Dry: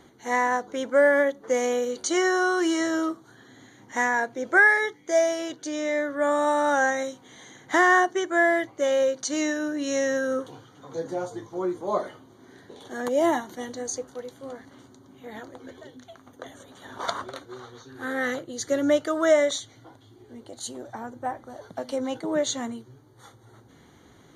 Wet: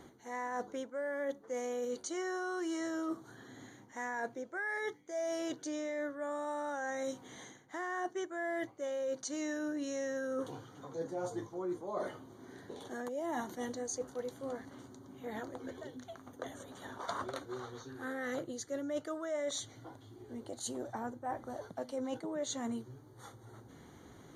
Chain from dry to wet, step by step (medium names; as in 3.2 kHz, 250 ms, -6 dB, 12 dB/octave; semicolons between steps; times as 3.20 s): reverse; compression 12:1, threshold -33 dBFS, peak gain reduction 20 dB; reverse; peaking EQ 3 kHz -4.5 dB 1.7 oct; trim -1 dB